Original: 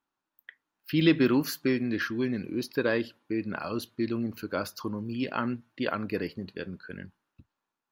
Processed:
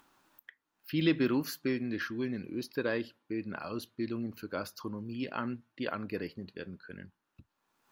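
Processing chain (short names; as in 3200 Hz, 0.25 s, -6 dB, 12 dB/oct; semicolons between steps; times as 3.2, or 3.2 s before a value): upward compressor, threshold -42 dBFS; gain -5.5 dB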